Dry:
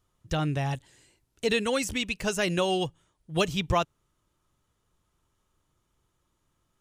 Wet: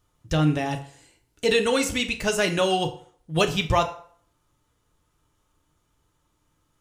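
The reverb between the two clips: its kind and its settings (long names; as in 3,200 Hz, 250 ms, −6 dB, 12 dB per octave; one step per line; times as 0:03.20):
feedback delay network reverb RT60 0.53 s, low-frequency decay 0.7×, high-frequency decay 0.75×, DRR 4.5 dB
level +3.5 dB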